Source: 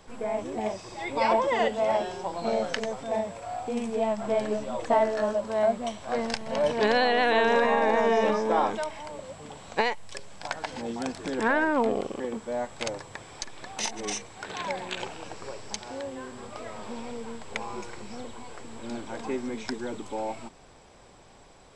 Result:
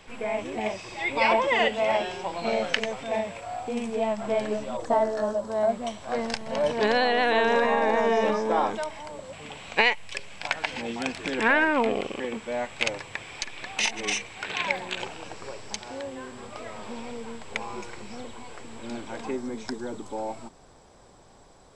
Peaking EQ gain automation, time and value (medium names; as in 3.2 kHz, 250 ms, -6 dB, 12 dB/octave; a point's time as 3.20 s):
peaking EQ 2.5 kHz 0.96 oct
+11 dB
from 3.41 s +4 dB
from 4.77 s -7.5 dB
from 5.69 s +1 dB
from 9.33 s +13 dB
from 14.77 s +3.5 dB
from 19.31 s -6 dB